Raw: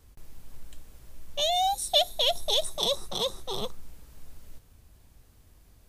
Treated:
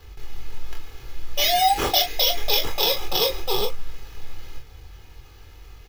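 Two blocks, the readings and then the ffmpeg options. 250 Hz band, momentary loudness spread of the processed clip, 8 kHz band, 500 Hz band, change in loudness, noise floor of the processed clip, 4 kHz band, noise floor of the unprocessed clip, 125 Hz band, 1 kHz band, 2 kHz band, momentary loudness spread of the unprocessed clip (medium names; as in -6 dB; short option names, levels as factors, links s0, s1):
+9.0 dB, 7 LU, +4.5 dB, +4.0 dB, +6.0 dB, -46 dBFS, +4.5 dB, -59 dBFS, +10.0 dB, +7.0 dB, +13.5 dB, 11 LU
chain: -af "equalizer=f=6800:w=1.5:g=6,aecho=1:1:2.4:0.68,acompressor=threshold=0.0501:ratio=3,acrusher=samples=5:mix=1:aa=0.000001,aecho=1:1:24|41:0.562|0.355,volume=2.24"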